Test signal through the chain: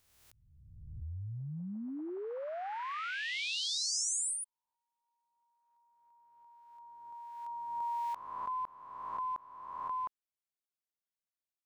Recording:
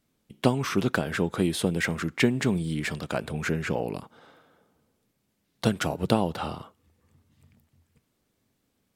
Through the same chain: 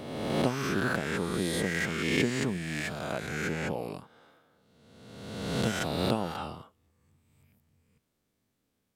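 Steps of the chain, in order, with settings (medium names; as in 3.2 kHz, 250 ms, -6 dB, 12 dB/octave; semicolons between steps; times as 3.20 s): reverse spectral sustain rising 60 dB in 1.47 s; trim -8 dB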